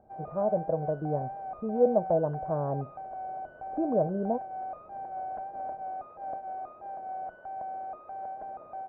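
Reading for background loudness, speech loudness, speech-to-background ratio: -39.5 LUFS, -30.0 LUFS, 9.5 dB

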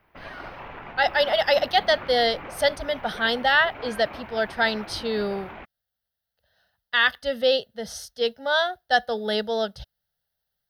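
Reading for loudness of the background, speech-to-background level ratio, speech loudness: -40.0 LUFS, 16.5 dB, -23.5 LUFS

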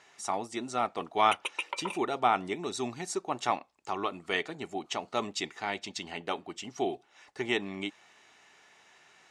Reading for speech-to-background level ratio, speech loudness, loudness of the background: 4.0 dB, -33.0 LUFS, -37.0 LUFS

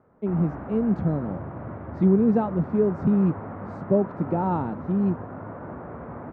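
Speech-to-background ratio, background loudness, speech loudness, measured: 12.5 dB, -37.0 LUFS, -24.5 LUFS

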